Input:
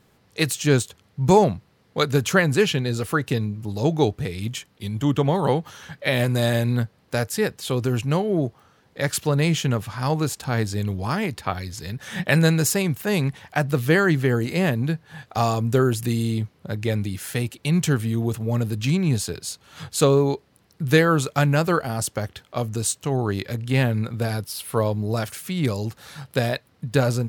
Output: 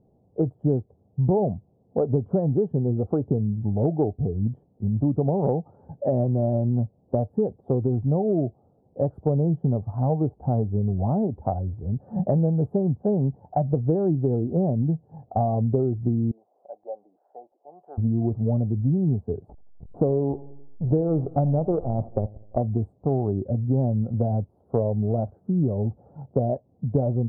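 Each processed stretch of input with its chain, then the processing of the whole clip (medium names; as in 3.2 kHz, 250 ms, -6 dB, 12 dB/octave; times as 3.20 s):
16.31–17.98 s: ladder high-pass 580 Hz, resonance 40% + upward compressor, threshold -47 dBFS
19.49–22.57 s: hysteresis with a dead band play -22.5 dBFS + feedback delay 85 ms, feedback 57%, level -20 dB
whole clip: elliptic low-pass 740 Hz, stop band 70 dB; spectral noise reduction 8 dB; compression 6:1, threshold -27 dBFS; trim +7.5 dB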